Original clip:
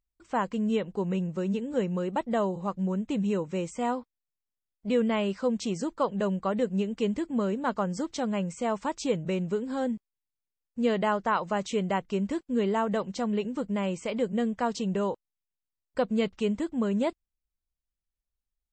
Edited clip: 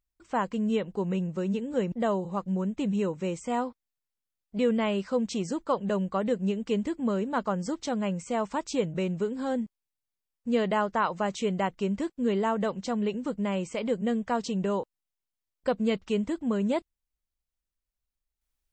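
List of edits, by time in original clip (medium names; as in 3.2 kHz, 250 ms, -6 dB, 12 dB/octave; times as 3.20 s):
1.92–2.23 s: delete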